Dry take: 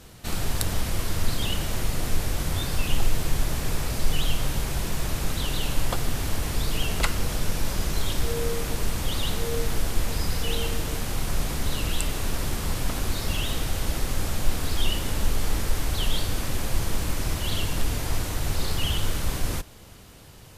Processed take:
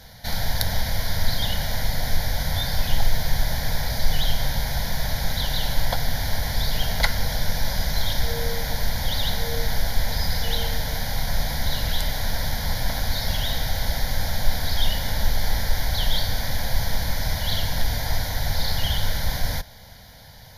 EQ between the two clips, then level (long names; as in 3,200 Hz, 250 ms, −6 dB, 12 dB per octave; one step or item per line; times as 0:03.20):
low-shelf EQ 460 Hz −5 dB
phaser with its sweep stopped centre 1,800 Hz, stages 8
+7.5 dB